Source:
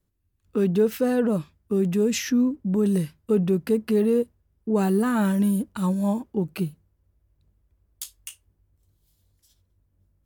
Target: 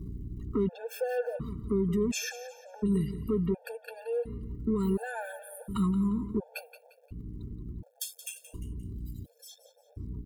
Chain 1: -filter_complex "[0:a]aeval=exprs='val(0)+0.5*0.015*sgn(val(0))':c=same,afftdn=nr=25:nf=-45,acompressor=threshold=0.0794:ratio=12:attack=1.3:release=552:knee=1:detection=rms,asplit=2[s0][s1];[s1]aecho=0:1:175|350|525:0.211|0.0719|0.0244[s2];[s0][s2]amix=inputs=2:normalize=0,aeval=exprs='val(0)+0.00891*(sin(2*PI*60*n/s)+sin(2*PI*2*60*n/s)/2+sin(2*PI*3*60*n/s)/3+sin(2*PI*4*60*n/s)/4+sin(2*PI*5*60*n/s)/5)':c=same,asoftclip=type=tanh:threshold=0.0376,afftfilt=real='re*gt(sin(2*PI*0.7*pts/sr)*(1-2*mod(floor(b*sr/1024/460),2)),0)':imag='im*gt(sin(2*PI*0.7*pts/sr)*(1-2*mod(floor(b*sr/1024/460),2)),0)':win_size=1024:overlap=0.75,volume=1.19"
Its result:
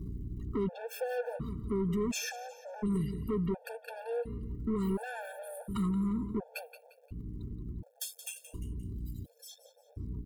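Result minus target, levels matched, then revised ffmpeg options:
saturation: distortion +13 dB
-filter_complex "[0:a]aeval=exprs='val(0)+0.5*0.015*sgn(val(0))':c=same,afftdn=nr=25:nf=-45,acompressor=threshold=0.0794:ratio=12:attack=1.3:release=552:knee=1:detection=rms,asplit=2[s0][s1];[s1]aecho=0:1:175|350|525:0.211|0.0719|0.0244[s2];[s0][s2]amix=inputs=2:normalize=0,aeval=exprs='val(0)+0.00891*(sin(2*PI*60*n/s)+sin(2*PI*2*60*n/s)/2+sin(2*PI*3*60*n/s)/3+sin(2*PI*4*60*n/s)/4+sin(2*PI*5*60*n/s)/5)':c=same,asoftclip=type=tanh:threshold=0.112,afftfilt=real='re*gt(sin(2*PI*0.7*pts/sr)*(1-2*mod(floor(b*sr/1024/460),2)),0)':imag='im*gt(sin(2*PI*0.7*pts/sr)*(1-2*mod(floor(b*sr/1024/460),2)),0)':win_size=1024:overlap=0.75,volume=1.19"

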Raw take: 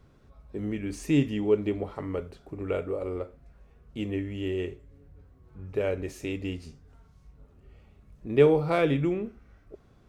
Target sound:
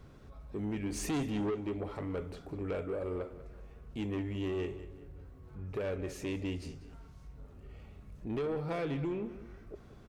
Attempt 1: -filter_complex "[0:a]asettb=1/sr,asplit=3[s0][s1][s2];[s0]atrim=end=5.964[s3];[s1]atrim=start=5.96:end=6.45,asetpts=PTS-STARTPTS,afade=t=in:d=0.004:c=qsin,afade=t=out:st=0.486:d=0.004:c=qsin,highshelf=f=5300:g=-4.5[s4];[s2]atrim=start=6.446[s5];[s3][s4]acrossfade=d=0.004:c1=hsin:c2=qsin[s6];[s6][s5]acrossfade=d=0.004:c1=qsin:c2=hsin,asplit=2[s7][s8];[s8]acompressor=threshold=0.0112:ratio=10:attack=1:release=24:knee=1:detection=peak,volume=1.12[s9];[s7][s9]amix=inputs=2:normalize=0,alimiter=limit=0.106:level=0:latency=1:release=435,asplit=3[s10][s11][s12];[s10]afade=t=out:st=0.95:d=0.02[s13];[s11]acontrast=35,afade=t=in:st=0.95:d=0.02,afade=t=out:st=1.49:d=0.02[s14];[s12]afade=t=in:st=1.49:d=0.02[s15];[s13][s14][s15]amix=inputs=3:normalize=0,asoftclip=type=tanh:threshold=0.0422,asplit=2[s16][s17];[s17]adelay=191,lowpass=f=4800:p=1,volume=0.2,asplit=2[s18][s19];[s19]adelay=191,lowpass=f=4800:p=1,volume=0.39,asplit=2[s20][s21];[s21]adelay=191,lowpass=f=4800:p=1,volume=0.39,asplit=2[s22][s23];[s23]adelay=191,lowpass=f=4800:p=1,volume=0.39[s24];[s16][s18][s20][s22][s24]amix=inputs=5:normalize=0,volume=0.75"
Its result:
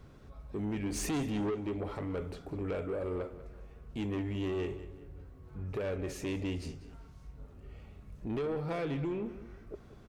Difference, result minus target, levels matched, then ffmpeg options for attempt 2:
compression: peak gain reduction -10 dB
-filter_complex "[0:a]asettb=1/sr,asplit=3[s0][s1][s2];[s0]atrim=end=5.964[s3];[s1]atrim=start=5.96:end=6.45,asetpts=PTS-STARTPTS,afade=t=in:d=0.004:c=qsin,afade=t=out:st=0.486:d=0.004:c=qsin,highshelf=f=5300:g=-4.5[s4];[s2]atrim=start=6.446[s5];[s3][s4]acrossfade=d=0.004:c1=hsin:c2=qsin[s6];[s6][s5]acrossfade=d=0.004:c1=qsin:c2=hsin,asplit=2[s7][s8];[s8]acompressor=threshold=0.00316:ratio=10:attack=1:release=24:knee=1:detection=peak,volume=1.12[s9];[s7][s9]amix=inputs=2:normalize=0,alimiter=limit=0.106:level=0:latency=1:release=435,asplit=3[s10][s11][s12];[s10]afade=t=out:st=0.95:d=0.02[s13];[s11]acontrast=35,afade=t=in:st=0.95:d=0.02,afade=t=out:st=1.49:d=0.02[s14];[s12]afade=t=in:st=1.49:d=0.02[s15];[s13][s14][s15]amix=inputs=3:normalize=0,asoftclip=type=tanh:threshold=0.0422,asplit=2[s16][s17];[s17]adelay=191,lowpass=f=4800:p=1,volume=0.2,asplit=2[s18][s19];[s19]adelay=191,lowpass=f=4800:p=1,volume=0.39,asplit=2[s20][s21];[s21]adelay=191,lowpass=f=4800:p=1,volume=0.39,asplit=2[s22][s23];[s23]adelay=191,lowpass=f=4800:p=1,volume=0.39[s24];[s16][s18][s20][s22][s24]amix=inputs=5:normalize=0,volume=0.75"

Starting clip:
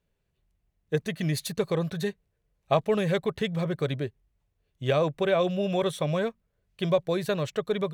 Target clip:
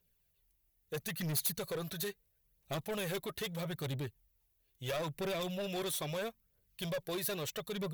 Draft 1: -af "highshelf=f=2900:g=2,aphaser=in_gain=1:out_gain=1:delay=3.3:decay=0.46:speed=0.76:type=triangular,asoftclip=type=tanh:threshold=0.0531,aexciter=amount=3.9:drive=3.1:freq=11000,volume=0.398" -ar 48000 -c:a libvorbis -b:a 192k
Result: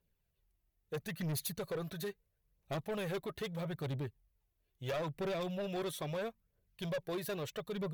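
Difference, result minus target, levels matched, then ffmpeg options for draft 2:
8 kHz band -5.5 dB
-af "highshelf=f=2900:g=14,aphaser=in_gain=1:out_gain=1:delay=3.3:decay=0.46:speed=0.76:type=triangular,asoftclip=type=tanh:threshold=0.0531,aexciter=amount=3.9:drive=3.1:freq=11000,volume=0.398" -ar 48000 -c:a libvorbis -b:a 192k

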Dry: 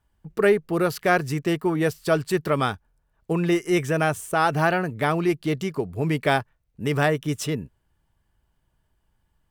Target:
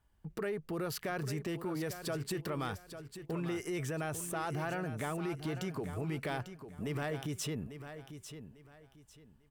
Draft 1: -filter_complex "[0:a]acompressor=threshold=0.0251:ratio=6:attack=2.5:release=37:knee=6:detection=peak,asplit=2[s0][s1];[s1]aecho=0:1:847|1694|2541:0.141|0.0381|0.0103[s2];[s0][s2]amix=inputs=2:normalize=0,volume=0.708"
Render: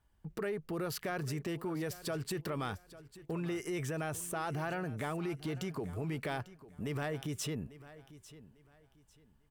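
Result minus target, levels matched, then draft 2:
echo-to-direct -6.5 dB
-filter_complex "[0:a]acompressor=threshold=0.0251:ratio=6:attack=2.5:release=37:knee=6:detection=peak,asplit=2[s0][s1];[s1]aecho=0:1:847|1694|2541:0.299|0.0806|0.0218[s2];[s0][s2]amix=inputs=2:normalize=0,volume=0.708"

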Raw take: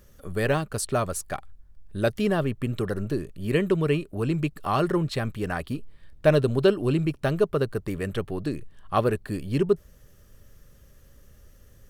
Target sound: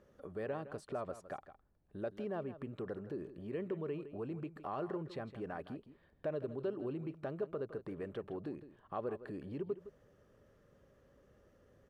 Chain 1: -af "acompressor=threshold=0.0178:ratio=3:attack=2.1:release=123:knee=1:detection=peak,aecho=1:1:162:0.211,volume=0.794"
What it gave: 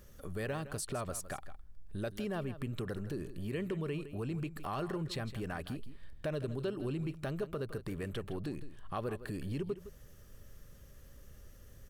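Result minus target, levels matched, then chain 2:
500 Hz band -3.0 dB
-af "acompressor=threshold=0.0178:ratio=3:attack=2.1:release=123:knee=1:detection=peak,bandpass=f=540:t=q:w=0.71:csg=0,aecho=1:1:162:0.211,volume=0.794"

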